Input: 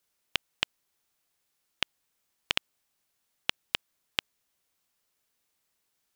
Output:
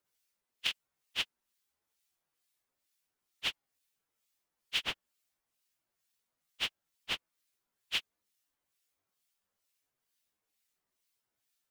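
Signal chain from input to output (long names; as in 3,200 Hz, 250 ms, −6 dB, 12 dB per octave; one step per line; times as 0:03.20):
two-band tremolo in antiphase 4.2 Hz, depth 70%, crossover 1,800 Hz
time stretch by phase vocoder 1.9×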